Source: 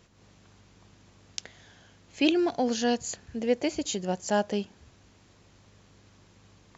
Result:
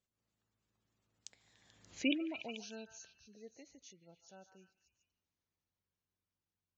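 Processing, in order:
source passing by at 0:01.94, 29 m/s, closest 2.5 metres
gate on every frequency bin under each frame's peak −25 dB strong
high-shelf EQ 3,300 Hz +8.5 dB
on a send: echo through a band-pass that steps 145 ms, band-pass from 1,200 Hz, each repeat 0.7 octaves, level −5 dB
on the sum: level −4.5 dB

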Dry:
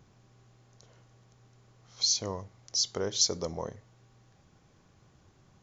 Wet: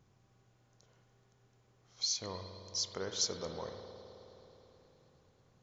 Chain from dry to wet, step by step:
spring reverb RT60 3.8 s, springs 53 ms, chirp 55 ms, DRR 4 dB
dynamic equaliser 1,800 Hz, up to +6 dB, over −48 dBFS, Q 0.93
level −8.5 dB

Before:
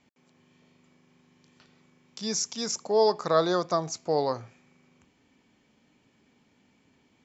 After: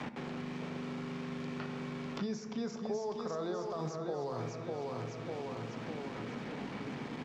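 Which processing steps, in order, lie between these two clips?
high-pass filter 91 Hz 12 dB per octave
high-shelf EQ 2,600 Hz −9 dB
reversed playback
downward compressor, threshold −40 dBFS, peak gain reduction 20 dB
reversed playback
brickwall limiter −36.5 dBFS, peak gain reduction 7.5 dB
bit reduction 11 bits
high-frequency loss of the air 140 metres
repeating echo 599 ms, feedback 40%, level −6 dB
on a send at −8 dB: convolution reverb RT60 1.5 s, pre-delay 3 ms
on the sum: multiband upward and downward compressor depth 100%
level +9.5 dB

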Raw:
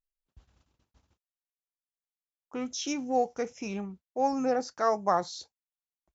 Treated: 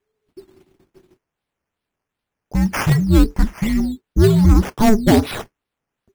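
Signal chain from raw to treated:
sine wavefolder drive 6 dB, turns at −12.5 dBFS
frequency shifter −440 Hz
sample-and-hold swept by an LFO 9×, swing 60% 2.6 Hz
low-shelf EQ 370 Hz +6 dB
level +3 dB

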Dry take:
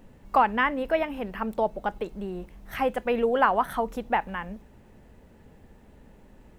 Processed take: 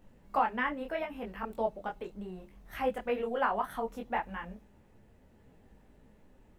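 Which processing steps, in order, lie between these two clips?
micro pitch shift up and down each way 24 cents
level −4 dB

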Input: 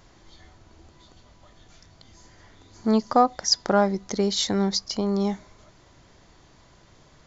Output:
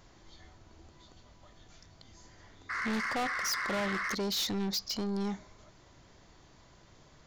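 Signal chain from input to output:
sound drawn into the spectrogram noise, 0:02.69–0:04.15, 1,000–2,200 Hz −29 dBFS
dynamic equaliser 3,900 Hz, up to +6 dB, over −40 dBFS, Q 0.78
soft clipping −25.5 dBFS, distortion −4 dB
level −4 dB

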